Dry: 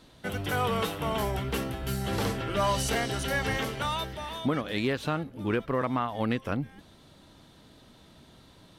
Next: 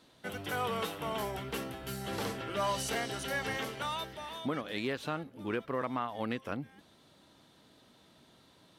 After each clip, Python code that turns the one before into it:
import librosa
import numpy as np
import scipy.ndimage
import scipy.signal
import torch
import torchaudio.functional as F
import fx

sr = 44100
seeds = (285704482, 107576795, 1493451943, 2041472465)

y = fx.highpass(x, sr, hz=210.0, slope=6)
y = F.gain(torch.from_numpy(y), -5.0).numpy()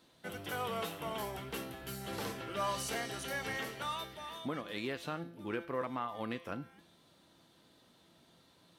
y = fx.high_shelf(x, sr, hz=12000.0, db=5.0)
y = fx.comb_fb(y, sr, f0_hz=170.0, decay_s=0.63, harmonics='all', damping=0.0, mix_pct=70)
y = F.gain(torch.from_numpy(y), 5.5).numpy()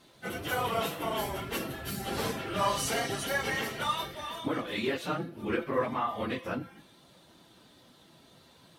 y = fx.phase_scramble(x, sr, seeds[0], window_ms=50)
y = F.gain(torch.from_numpy(y), 7.0).numpy()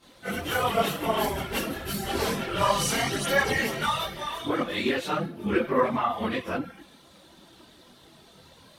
y = fx.chorus_voices(x, sr, voices=4, hz=1.1, base_ms=23, depth_ms=3.0, mix_pct=70)
y = F.gain(torch.from_numpy(y), 7.5).numpy()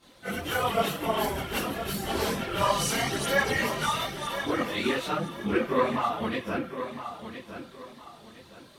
y = fx.echo_feedback(x, sr, ms=1013, feedback_pct=30, wet_db=-10.0)
y = F.gain(torch.from_numpy(y), -1.5).numpy()